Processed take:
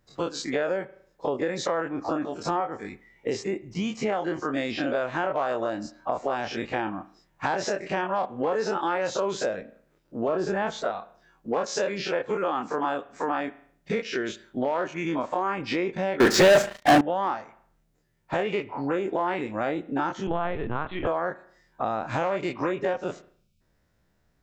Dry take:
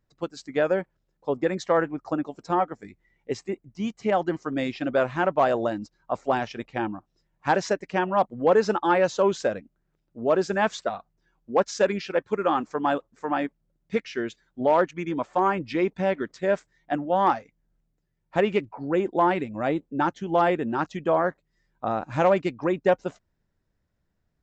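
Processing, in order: every event in the spectrogram widened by 60 ms; bass shelf 280 Hz -5.5 dB; in parallel at +0.5 dB: peak limiter -13 dBFS, peak gain reduction 7.5 dB; 10.28–10.84 s: on the sum: tilt EQ -2 dB/octave; 20.27–21.07 s: LPC vocoder at 8 kHz pitch kept; 23.31–23.61 s: spectral selection erased 250–2200 Hz; on a send at -18 dB: reverberation, pre-delay 36 ms; on the sum: compression 4:1, threshold -26 dBFS, peak gain reduction 15.5 dB; 16.20–17.01 s: waveshaping leveller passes 5

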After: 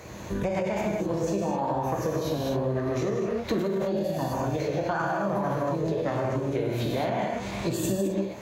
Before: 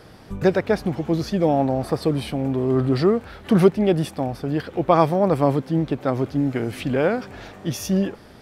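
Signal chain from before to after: rippled EQ curve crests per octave 1.3, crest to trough 6 dB; gated-style reverb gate 280 ms flat, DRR -4 dB; peak limiter -7 dBFS, peak gain reduction 8 dB; bass shelf 88 Hz +8.5 dB; compression 12:1, threshold -24 dBFS, peak gain reduction 15 dB; high-pass 59 Hz 24 dB/octave; formant shift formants +5 st

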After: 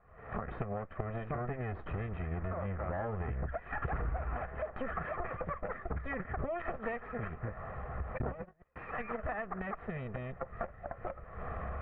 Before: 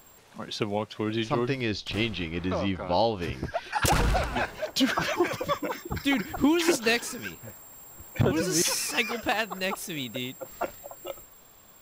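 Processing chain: comb filter that takes the minimum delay 1.6 ms; recorder AGC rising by 68 dB/s; steep low-pass 1.9 kHz 36 dB/octave; peaking EQ 64 Hz +11.5 dB 0.3 oct; 8.18–8.76 s: gate -25 dBFS, range -37 dB; band-stop 560 Hz, Q 12; compression 2.5:1, threshold -29 dBFS, peak gain reduction 7.5 dB; trim -5.5 dB

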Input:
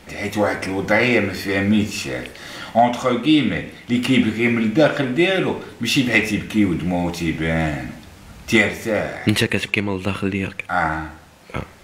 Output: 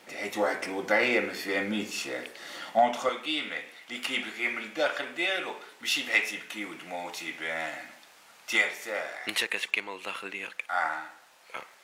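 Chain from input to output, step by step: high-pass 350 Hz 12 dB/octave, from 3.09 s 730 Hz; crackle 78 per s -45 dBFS; trim -7 dB

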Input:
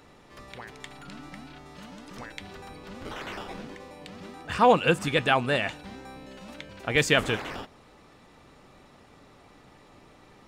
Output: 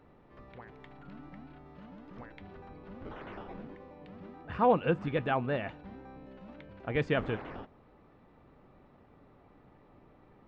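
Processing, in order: tape spacing loss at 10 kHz 45 dB; trim -3 dB

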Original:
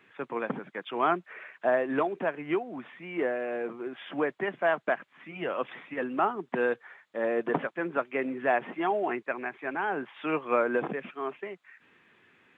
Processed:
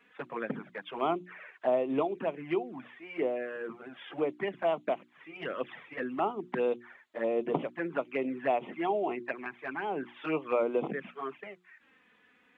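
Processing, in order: touch-sensitive flanger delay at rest 4.3 ms, full sweep at -25.5 dBFS; hum notches 60/120/180/240/300/360 Hz

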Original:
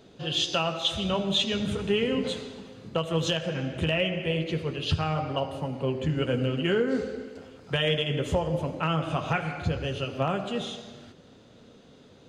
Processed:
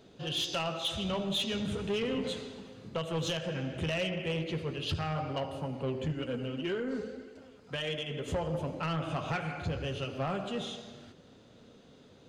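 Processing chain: 6.12–8.28 s: flange 1.7 Hz, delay 2.5 ms, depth 2.5 ms, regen +46%; saturation -22.5 dBFS, distortion -14 dB; trim -3.5 dB

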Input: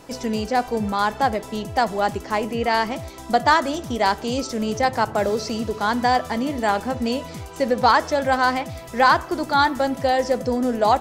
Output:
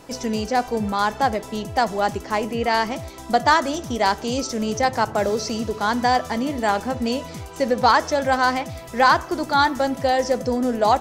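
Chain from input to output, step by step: dynamic bell 6 kHz, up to +5 dB, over -48 dBFS, Q 3.2

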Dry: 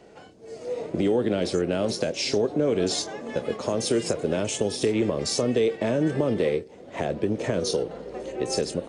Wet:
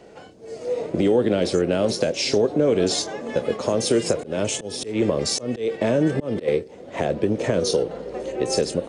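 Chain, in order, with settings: peaking EQ 520 Hz +2.5 dB 0.32 oct; 4.18–6.48 s: slow attack 191 ms; trim +3.5 dB

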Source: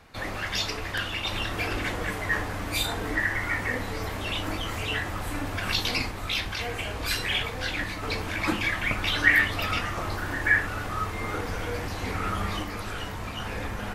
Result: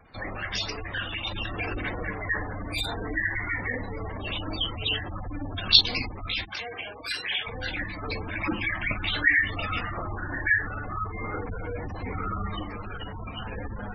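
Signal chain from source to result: spectral gate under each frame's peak -15 dB strong; 4.53–5.81 s: resonant high shelf 2.8 kHz +9 dB, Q 3; 6.44–7.46 s: high-pass 370 Hz -> 850 Hz 6 dB/octave; trim -1 dB

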